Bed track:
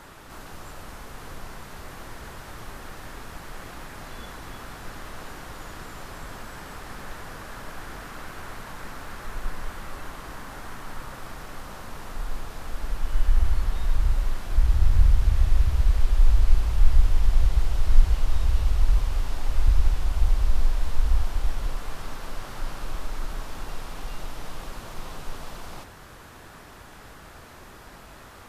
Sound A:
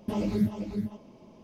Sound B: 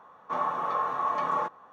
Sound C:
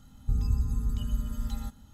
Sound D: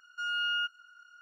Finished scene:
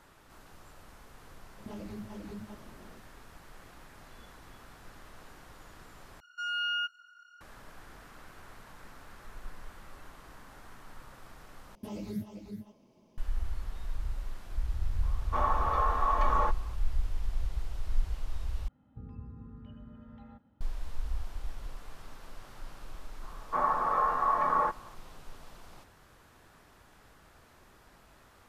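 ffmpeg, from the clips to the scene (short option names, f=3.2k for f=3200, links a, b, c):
-filter_complex "[1:a]asplit=2[a][b];[2:a]asplit=2[c][d];[0:a]volume=-13dB[e];[a]acompressor=threshold=-38dB:ratio=6:attack=3.2:release=140:knee=1:detection=peak[f];[b]highshelf=f=5.8k:g=10.5[g];[3:a]highpass=110,equalizer=f=300:t=q:w=4:g=5,equalizer=f=530:t=q:w=4:g=9,equalizer=f=760:t=q:w=4:g=3,lowpass=f=2.4k:w=0.5412,lowpass=f=2.4k:w=1.3066[h];[d]highshelf=f=2.4k:t=q:w=1.5:g=-9[i];[e]asplit=4[j][k][l][m];[j]atrim=end=6.204[n];[4:a]atrim=end=1.21,asetpts=PTS-STARTPTS,volume=-1dB[o];[k]atrim=start=7.406:end=11.754[p];[g]atrim=end=1.43,asetpts=PTS-STARTPTS,volume=-11dB[q];[l]atrim=start=13.176:end=18.684[r];[h]atrim=end=1.93,asetpts=PTS-STARTPTS,volume=-10dB[s];[m]atrim=start=20.606[t];[f]atrim=end=1.43,asetpts=PTS-STARTPTS,volume=-2dB,afade=t=in:d=0.004:c=hsin,afade=t=out:st=1.426:d=0.004:c=hsin,adelay=1580[u];[c]atrim=end=1.72,asetpts=PTS-STARTPTS,volume=-0.5dB,afade=t=in:d=0.004:c=hsin,afade=t=out:st=1.716:d=0.004:c=hsin,adelay=15030[v];[i]atrim=end=1.72,asetpts=PTS-STARTPTS,volume=-0.5dB,afade=t=in:d=0.004:c=hsin,afade=t=out:st=1.716:d=0.004:c=hsin,adelay=23230[w];[n][o]acrossfade=d=0.004:c1=hsin:c2=hsin[x];[x][p]acrossfade=d=0.004:c1=hsin:c2=hsin[y];[y][q]acrossfade=d=0.004:c1=hsin:c2=hsin[z];[z][r]acrossfade=d=0.004:c1=hsin:c2=hsin[aa];[aa][s]acrossfade=d=0.004:c1=hsin:c2=hsin[ab];[ab][t]acrossfade=d=0.004:c1=hsin:c2=hsin[ac];[ac][u][v][w]amix=inputs=4:normalize=0"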